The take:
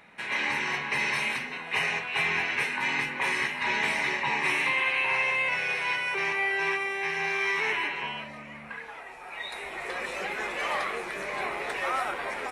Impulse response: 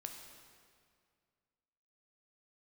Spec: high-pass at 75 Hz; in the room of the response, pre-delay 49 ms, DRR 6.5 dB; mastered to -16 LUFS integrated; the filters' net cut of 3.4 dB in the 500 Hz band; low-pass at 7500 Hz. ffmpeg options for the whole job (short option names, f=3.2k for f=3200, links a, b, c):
-filter_complex "[0:a]highpass=75,lowpass=7.5k,equalizer=f=500:t=o:g=-4.5,asplit=2[a][b];[1:a]atrim=start_sample=2205,adelay=49[c];[b][c]afir=irnorm=-1:irlink=0,volume=-3dB[d];[a][d]amix=inputs=2:normalize=0,volume=11dB"